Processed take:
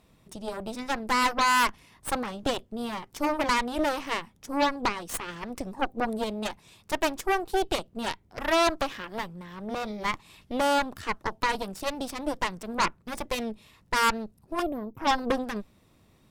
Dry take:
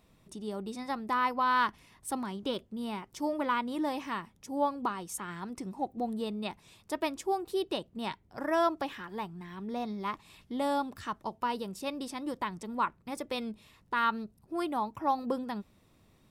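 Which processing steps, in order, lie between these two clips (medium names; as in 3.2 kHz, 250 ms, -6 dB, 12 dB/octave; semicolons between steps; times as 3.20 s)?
time-frequency box 14.62–14.98 s, 530–12000 Hz -19 dB; Chebyshev shaper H 8 -11 dB, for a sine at -16.5 dBFS; trim +3 dB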